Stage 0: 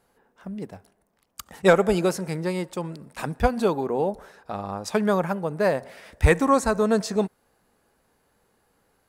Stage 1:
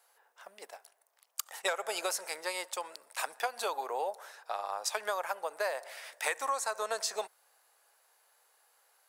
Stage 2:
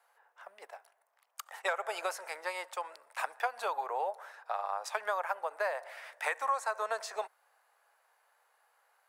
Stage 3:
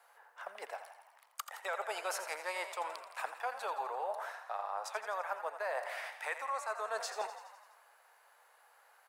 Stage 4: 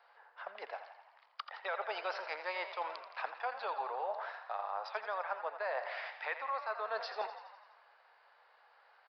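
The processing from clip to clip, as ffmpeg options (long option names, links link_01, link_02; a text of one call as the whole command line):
ffmpeg -i in.wav -af "highpass=frequency=610:width=0.5412,highpass=frequency=610:width=1.3066,highshelf=frequency=3500:gain=8,acompressor=threshold=-27dB:ratio=8,volume=-2dB" out.wav
ffmpeg -i in.wav -filter_complex "[0:a]acrossover=split=500 2400:gain=0.178 1 0.224[link_01][link_02][link_03];[link_01][link_02][link_03]amix=inputs=3:normalize=0,volume=2.5dB" out.wav
ffmpeg -i in.wav -filter_complex "[0:a]areverse,acompressor=threshold=-41dB:ratio=6,areverse,asplit=9[link_01][link_02][link_03][link_04][link_05][link_06][link_07][link_08][link_09];[link_02]adelay=84,afreqshift=38,volume=-10.5dB[link_10];[link_03]adelay=168,afreqshift=76,volume=-14.4dB[link_11];[link_04]adelay=252,afreqshift=114,volume=-18.3dB[link_12];[link_05]adelay=336,afreqshift=152,volume=-22.1dB[link_13];[link_06]adelay=420,afreqshift=190,volume=-26dB[link_14];[link_07]adelay=504,afreqshift=228,volume=-29.9dB[link_15];[link_08]adelay=588,afreqshift=266,volume=-33.8dB[link_16];[link_09]adelay=672,afreqshift=304,volume=-37.6dB[link_17];[link_01][link_10][link_11][link_12][link_13][link_14][link_15][link_16][link_17]amix=inputs=9:normalize=0,volume=5.5dB" out.wav
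ffmpeg -i in.wav -af "aresample=11025,aresample=44100" out.wav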